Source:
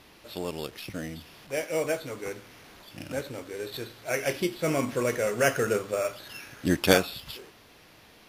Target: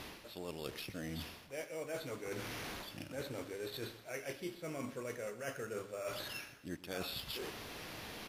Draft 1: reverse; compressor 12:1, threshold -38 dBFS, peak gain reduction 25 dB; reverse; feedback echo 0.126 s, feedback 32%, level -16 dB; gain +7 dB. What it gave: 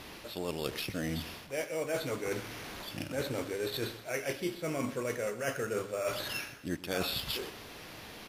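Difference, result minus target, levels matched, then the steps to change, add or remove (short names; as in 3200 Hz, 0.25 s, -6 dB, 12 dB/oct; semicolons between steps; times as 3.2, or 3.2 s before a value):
compressor: peak gain reduction -8 dB
change: compressor 12:1, threshold -47 dBFS, peak gain reduction 33 dB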